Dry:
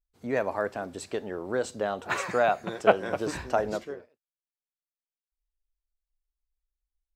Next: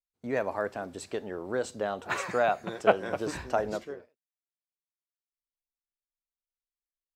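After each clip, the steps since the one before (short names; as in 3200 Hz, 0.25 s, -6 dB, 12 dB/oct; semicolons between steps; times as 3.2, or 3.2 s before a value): gate with hold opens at -46 dBFS; gain -2 dB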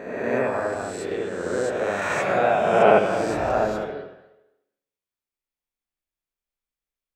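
spectral swells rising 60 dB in 1.55 s; reverb, pre-delay 69 ms, DRR -3 dB; gain -2 dB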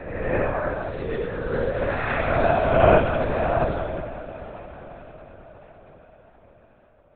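diffused feedback echo 0.531 s, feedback 60%, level -15 dB; LPC vocoder at 8 kHz whisper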